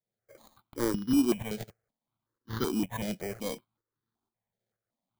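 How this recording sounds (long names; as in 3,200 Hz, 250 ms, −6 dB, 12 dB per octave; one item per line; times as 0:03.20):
a buzz of ramps at a fixed pitch in blocks of 8 samples
tremolo saw up 2.1 Hz, depth 65%
aliases and images of a low sample rate 2,700 Hz, jitter 0%
notches that jump at a steady rate 5.3 Hz 290–2,400 Hz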